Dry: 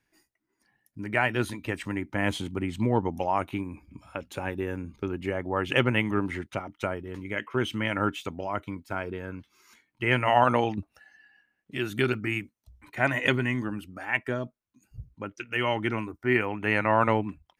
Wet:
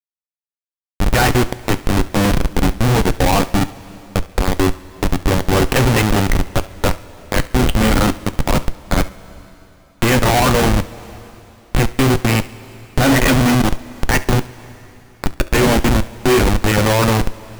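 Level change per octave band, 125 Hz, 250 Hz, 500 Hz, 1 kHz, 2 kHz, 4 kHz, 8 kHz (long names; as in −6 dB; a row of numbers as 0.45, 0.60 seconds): +15.5, +13.0, +10.0, +9.0, +7.5, +14.0, +25.0 decibels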